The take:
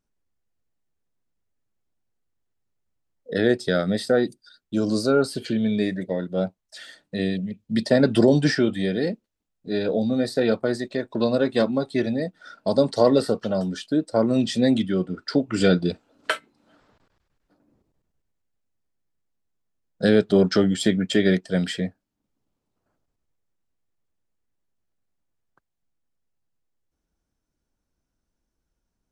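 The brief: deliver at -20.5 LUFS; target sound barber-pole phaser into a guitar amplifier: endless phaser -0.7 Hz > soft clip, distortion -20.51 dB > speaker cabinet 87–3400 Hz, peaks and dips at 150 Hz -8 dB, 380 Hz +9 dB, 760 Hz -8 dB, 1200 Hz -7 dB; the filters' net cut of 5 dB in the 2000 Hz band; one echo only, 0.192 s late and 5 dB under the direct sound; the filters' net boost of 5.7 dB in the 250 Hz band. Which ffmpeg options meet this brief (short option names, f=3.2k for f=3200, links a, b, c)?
-filter_complex "[0:a]equalizer=f=250:t=o:g=6,equalizer=f=2k:t=o:g=-5,aecho=1:1:192:0.562,asplit=2[a][b];[b]afreqshift=-0.7[c];[a][c]amix=inputs=2:normalize=1,asoftclip=threshold=-8.5dB,highpass=87,equalizer=f=150:t=q:w=4:g=-8,equalizer=f=380:t=q:w=4:g=9,equalizer=f=760:t=q:w=4:g=-8,equalizer=f=1.2k:t=q:w=4:g=-7,lowpass=f=3.4k:w=0.5412,lowpass=f=3.4k:w=1.3066,volume=-0.5dB"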